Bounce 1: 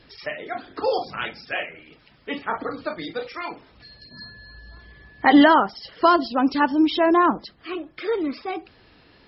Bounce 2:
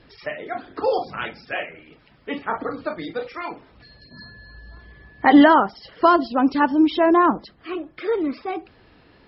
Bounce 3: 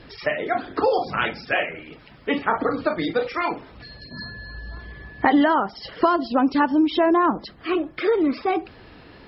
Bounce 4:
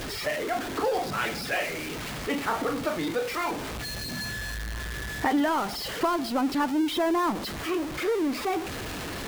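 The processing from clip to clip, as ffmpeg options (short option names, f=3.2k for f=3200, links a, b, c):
-af "highshelf=f=3.4k:g=-10.5,volume=2dB"
-af "acompressor=threshold=-24dB:ratio=4,volume=7dB"
-af "aeval=exprs='val(0)+0.5*0.0944*sgn(val(0))':c=same,volume=-9dB"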